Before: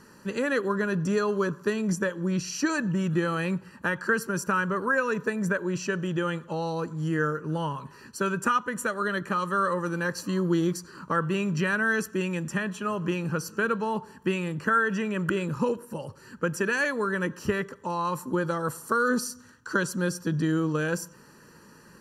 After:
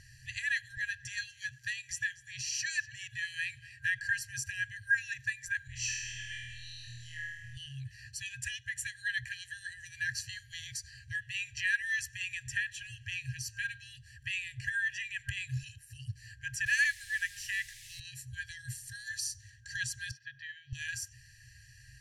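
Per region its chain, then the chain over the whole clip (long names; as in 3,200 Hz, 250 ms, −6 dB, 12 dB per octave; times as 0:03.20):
0:00.77–0:03.99: low-shelf EQ 110 Hz −10 dB + single-tap delay 244 ms −20 dB
0:05.67–0:07.57: downward compressor, threshold −32 dBFS + flutter between parallel walls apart 4.3 metres, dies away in 1.2 s
0:16.66–0:18.00: high-pass filter 610 Hz + high-shelf EQ 10,000 Hz +11 dB + bit-depth reduction 8 bits, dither triangular
0:20.11–0:20.73: high-pass filter 320 Hz + high-frequency loss of the air 320 metres
whole clip: brick-wall band-stop 130–1,600 Hz; low-pass filter 9,000 Hz 12 dB per octave; low-shelf EQ 250 Hz +9.5 dB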